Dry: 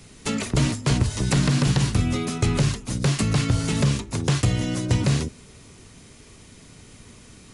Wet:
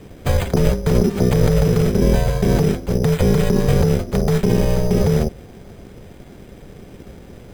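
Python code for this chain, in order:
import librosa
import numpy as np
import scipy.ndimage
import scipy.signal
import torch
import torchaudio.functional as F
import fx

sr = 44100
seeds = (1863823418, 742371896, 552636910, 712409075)

p1 = x * np.sin(2.0 * np.pi * 300.0 * np.arange(len(x)) / sr)
p2 = fx.over_compress(p1, sr, threshold_db=-25.0, ratio=-0.5)
p3 = p1 + F.gain(torch.from_numpy(p2), 2.0).numpy()
p4 = np.repeat(scipy.signal.resample_poly(p3, 1, 8), 8)[:len(p3)]
p5 = fx.low_shelf(p4, sr, hz=190.0, db=11.0)
y = F.gain(torch.from_numpy(p5), -1.5).numpy()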